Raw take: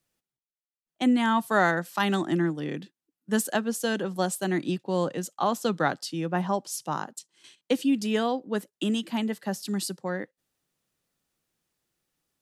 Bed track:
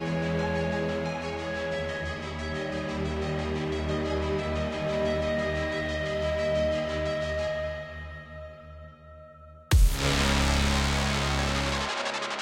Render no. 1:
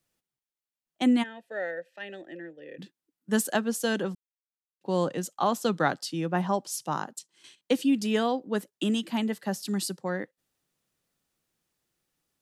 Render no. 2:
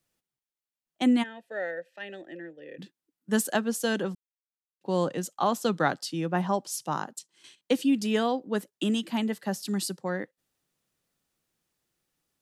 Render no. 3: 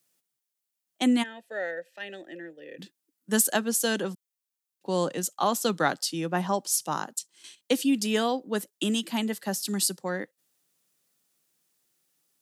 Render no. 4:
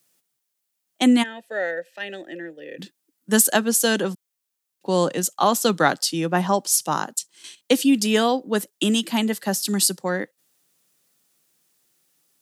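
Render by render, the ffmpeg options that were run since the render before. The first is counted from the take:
ffmpeg -i in.wav -filter_complex "[0:a]asplit=3[link_01][link_02][link_03];[link_01]afade=type=out:start_time=1.22:duration=0.02[link_04];[link_02]asplit=3[link_05][link_06][link_07];[link_05]bandpass=frequency=530:width_type=q:width=8,volume=0dB[link_08];[link_06]bandpass=frequency=1840:width_type=q:width=8,volume=-6dB[link_09];[link_07]bandpass=frequency=2480:width_type=q:width=8,volume=-9dB[link_10];[link_08][link_09][link_10]amix=inputs=3:normalize=0,afade=type=in:start_time=1.22:duration=0.02,afade=type=out:start_time=2.78:duration=0.02[link_11];[link_03]afade=type=in:start_time=2.78:duration=0.02[link_12];[link_04][link_11][link_12]amix=inputs=3:normalize=0,asplit=3[link_13][link_14][link_15];[link_13]atrim=end=4.15,asetpts=PTS-STARTPTS,afade=type=out:start_time=4.146:duration=0.004:curve=hsin[link_16];[link_14]atrim=start=4.15:end=4.81,asetpts=PTS-STARTPTS,volume=0[link_17];[link_15]atrim=start=4.81,asetpts=PTS-STARTPTS,afade=type=in:duration=0.004:curve=hsin[link_18];[link_16][link_17][link_18]concat=n=3:v=0:a=1" out.wav
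ffmpeg -i in.wav -af anull out.wav
ffmpeg -i in.wav -af "highpass=150,highshelf=frequency=4400:gain=10.5" out.wav
ffmpeg -i in.wav -af "volume=6.5dB,alimiter=limit=-3dB:level=0:latency=1" out.wav

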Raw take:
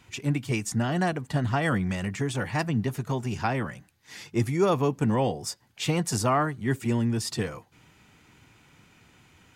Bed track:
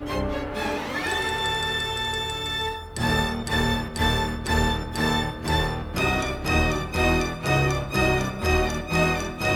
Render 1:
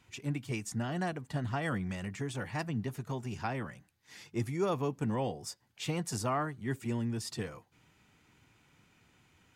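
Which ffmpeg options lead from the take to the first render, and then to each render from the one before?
ffmpeg -i in.wav -af "volume=-8.5dB" out.wav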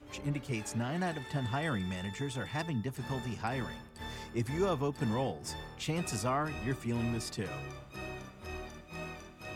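ffmpeg -i in.wav -i bed.wav -filter_complex "[1:a]volume=-21dB[link_01];[0:a][link_01]amix=inputs=2:normalize=0" out.wav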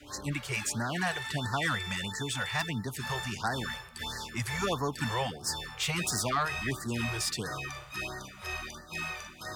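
ffmpeg -i in.wav -filter_complex "[0:a]acrossover=split=710|880[link_01][link_02][link_03];[link_03]aeval=exprs='0.0562*sin(PI/2*2.24*val(0)/0.0562)':channel_layout=same[link_04];[link_01][link_02][link_04]amix=inputs=3:normalize=0,afftfilt=real='re*(1-between(b*sr/1024,220*pow(2800/220,0.5+0.5*sin(2*PI*1.5*pts/sr))/1.41,220*pow(2800/220,0.5+0.5*sin(2*PI*1.5*pts/sr))*1.41))':imag='im*(1-between(b*sr/1024,220*pow(2800/220,0.5+0.5*sin(2*PI*1.5*pts/sr))/1.41,220*pow(2800/220,0.5+0.5*sin(2*PI*1.5*pts/sr))*1.41))':win_size=1024:overlap=0.75" out.wav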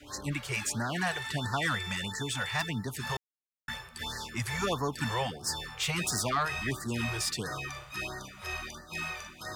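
ffmpeg -i in.wav -filter_complex "[0:a]asplit=3[link_01][link_02][link_03];[link_01]atrim=end=3.17,asetpts=PTS-STARTPTS,afade=type=out:start_time=3.166:duration=0.004:curve=hsin[link_04];[link_02]atrim=start=3.17:end=3.68,asetpts=PTS-STARTPTS,volume=0[link_05];[link_03]atrim=start=3.68,asetpts=PTS-STARTPTS,afade=type=in:duration=0.004:curve=hsin[link_06];[link_04][link_05][link_06]concat=n=3:v=0:a=1" out.wav

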